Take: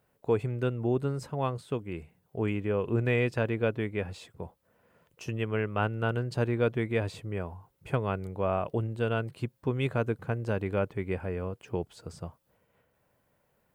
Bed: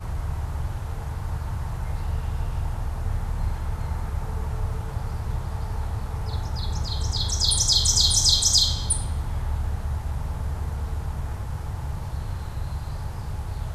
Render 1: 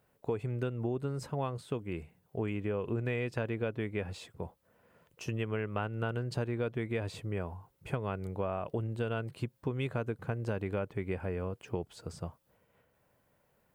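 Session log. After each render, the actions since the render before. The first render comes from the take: compressor, threshold -30 dBFS, peak gain reduction 9 dB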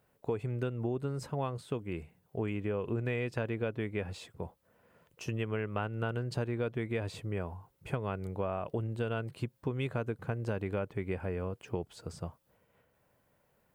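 nothing audible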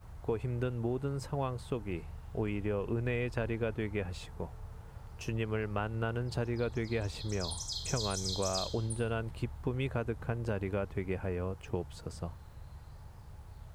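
add bed -19 dB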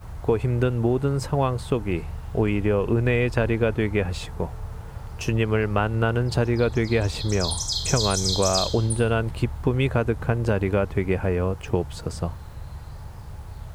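gain +12 dB

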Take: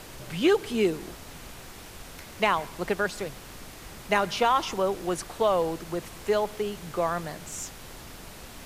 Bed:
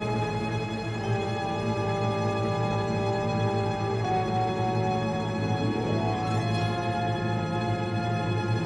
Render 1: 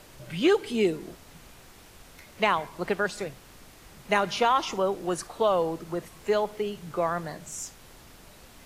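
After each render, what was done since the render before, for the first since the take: noise print and reduce 7 dB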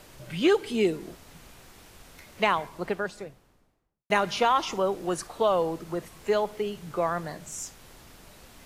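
2.45–4.1 studio fade out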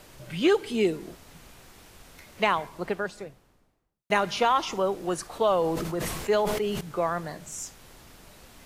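5.25–6.81 sustainer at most 32 dB/s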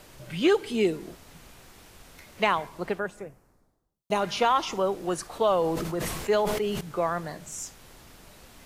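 2.98–4.2 bell 5100 Hz -> 1700 Hz -14 dB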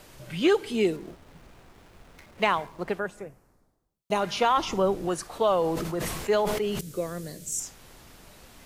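0.96–2.89 backlash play -46 dBFS; 4.57–5.08 low shelf 240 Hz +10.5 dB; 6.79–7.6 EQ curve 510 Hz 0 dB, 810 Hz -18 dB, 8000 Hz +9 dB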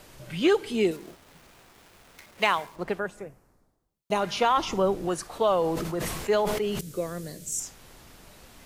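0.91–2.76 tilt +2 dB/oct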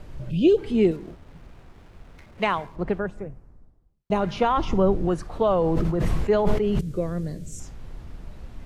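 RIAA curve playback; 0.3–0.58 spectral gain 730–2400 Hz -22 dB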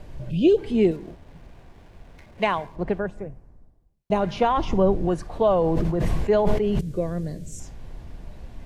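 bell 660 Hz +3 dB 0.51 oct; notch 1300 Hz, Q 8.5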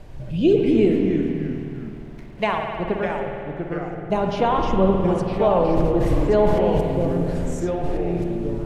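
echoes that change speed 0.143 s, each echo -3 st, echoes 3, each echo -6 dB; spring tank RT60 2.6 s, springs 52 ms, chirp 50 ms, DRR 2.5 dB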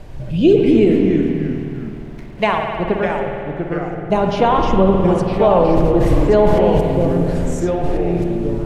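gain +5.5 dB; limiter -3 dBFS, peak gain reduction 3 dB

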